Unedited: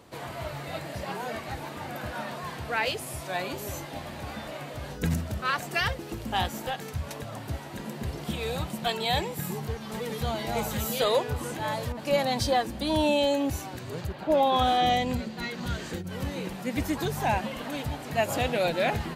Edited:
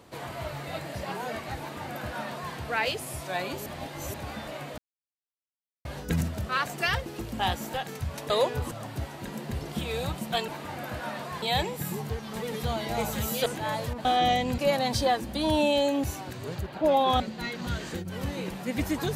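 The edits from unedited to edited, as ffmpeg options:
-filter_complex "[0:a]asplit=12[a][b][c][d][e][f][g][h][i][j][k][l];[a]atrim=end=3.662[m];[b]atrim=start=3.658:end=4.142,asetpts=PTS-STARTPTS,areverse[n];[c]atrim=start=4.138:end=4.78,asetpts=PTS-STARTPTS,afade=t=out:st=0.638:d=0.004:c=hsin,apad=pad_dur=1.07[o];[d]atrim=start=4.78:end=7.232,asetpts=PTS-STARTPTS,afade=t=in:d=0.004:c=hsin[p];[e]atrim=start=11.038:end=11.452[q];[f]atrim=start=7.228:end=9.002[r];[g]atrim=start=1.598:end=2.542[s];[h]atrim=start=8.998:end=11.042[t];[i]atrim=start=11.448:end=12.042[u];[j]atrim=start=14.658:end=15.192[v];[k]atrim=start=12.038:end=14.662[w];[l]atrim=start=15.188[x];[m][n]acrossfade=d=0.004:c1=hsin:c2=hsin[y];[o][p]concat=n=2:v=0:a=1[z];[y][z]acrossfade=d=0.004:c1=hsin:c2=hsin[aa];[aa][q]acrossfade=d=0.004:c1=hsin:c2=hsin[ab];[ab][r]acrossfade=d=0.004:c1=hsin:c2=hsin[ac];[ac][s]acrossfade=d=0.004:c1=hsin:c2=hsin[ad];[ad][t]acrossfade=d=0.004:c1=hsin:c2=hsin[ae];[ae][u]acrossfade=d=0.004:c1=hsin:c2=hsin[af];[af][v]acrossfade=d=0.004:c1=hsin:c2=hsin[ag];[ag][w]acrossfade=d=0.004:c1=hsin:c2=hsin[ah];[ah][x]acrossfade=d=0.004:c1=hsin:c2=hsin"

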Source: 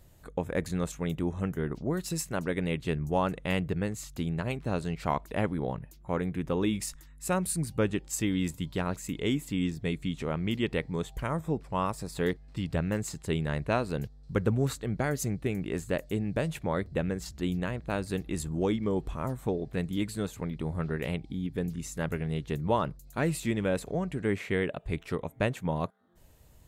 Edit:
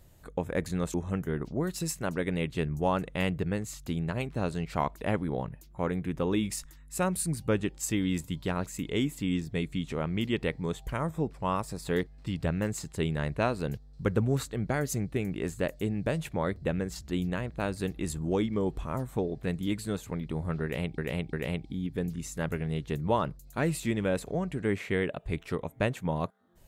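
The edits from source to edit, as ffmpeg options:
-filter_complex "[0:a]asplit=4[a][b][c][d];[a]atrim=end=0.942[e];[b]atrim=start=1.238:end=21.282[f];[c]atrim=start=20.928:end=21.282[g];[d]atrim=start=20.928[h];[e][f]acrossfade=d=0.004:c1=hsin:c2=hsin[i];[i][g]acrossfade=d=0.004:c1=hsin:c2=hsin[j];[j][h]acrossfade=d=0.004:c1=hsin:c2=hsin"

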